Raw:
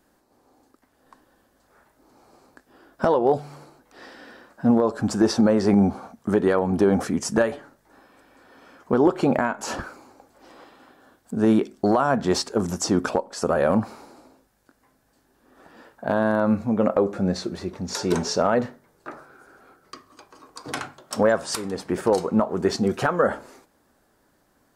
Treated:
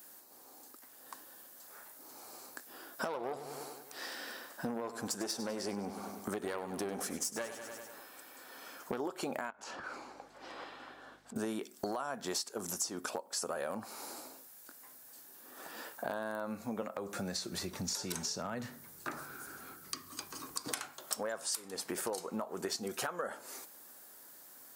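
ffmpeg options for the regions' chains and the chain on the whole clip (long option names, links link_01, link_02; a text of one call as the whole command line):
ffmpeg -i in.wav -filter_complex "[0:a]asettb=1/sr,asplit=3[link_01][link_02][link_03];[link_01]atrim=end=3.044[link_04];[link_02]atrim=start=3.04:end=9,asetpts=PTS-STARTPTS,afade=type=in:duration=0.004:curve=qsin,afade=type=out:start_time=5.956:duration=0.004:curve=qsin,aeval=exprs='(tanh(4.47*val(0)+0.6)-tanh(0.6))/4.47':channel_layout=same,aecho=1:1:98|196|294|392|490|588:0.224|0.125|0.0702|0.0393|0.022|0.0123,atrim=end_sample=262836[link_05];[link_03]atrim=start=8.996[link_06];[link_04][link_05]acrossfade=duration=0.004:curve1=hsin:curve2=qsin[link_07];[link_07][link_06]acrossfade=duration=0.004:curve1=qsin:curve2=hsin,asettb=1/sr,asplit=3[link_08][link_09][link_10];[link_08]atrim=end=9.504[link_11];[link_09]atrim=start=9.5:end=11.36,asetpts=PTS-STARTPTS,afade=type=in:duration=0.004:curve=qsin,afade=type=out:start_time=1.856:duration=0.004:curve=qsin,lowpass=3300,acompressor=threshold=-40dB:ratio=6:attack=3.2:release=140:knee=1:detection=peak,aeval=exprs='val(0)+0.00126*(sin(2*PI*50*n/s)+sin(2*PI*2*50*n/s)/2+sin(2*PI*3*50*n/s)/3+sin(2*PI*4*50*n/s)/4+sin(2*PI*5*50*n/s)/5)':channel_layout=same[link_12];[link_10]atrim=start=11.356[link_13];[link_11][link_12]acrossfade=duration=0.004:curve1=hsin:curve2=qsin[link_14];[link_14][link_13]acrossfade=duration=0.004:curve1=qsin:curve2=hsin,asettb=1/sr,asplit=3[link_15][link_16][link_17];[link_15]atrim=end=16.824[link_18];[link_16]atrim=start=16.82:end=20.68,asetpts=PTS-STARTPTS,afade=type=in:duration=0.004:curve=qsin,afade=type=out:start_time=3.856:duration=0.004:curve=qsin,asubboost=boost=10.5:cutoff=190,acrossover=split=210|920[link_19][link_20][link_21];[link_19]acompressor=threshold=-27dB:ratio=4[link_22];[link_20]acompressor=threshold=-29dB:ratio=4[link_23];[link_21]acompressor=threshold=-34dB:ratio=4[link_24];[link_22][link_23][link_24]amix=inputs=3:normalize=0[link_25];[link_17]atrim=start=20.676[link_26];[link_18][link_25]acrossfade=duration=0.004:curve1=hsin:curve2=qsin[link_27];[link_27][link_26]acrossfade=duration=0.004:curve1=qsin:curve2=hsin,highpass=54,aemphasis=mode=production:type=riaa,acompressor=threshold=-38dB:ratio=6,volume=2dB" out.wav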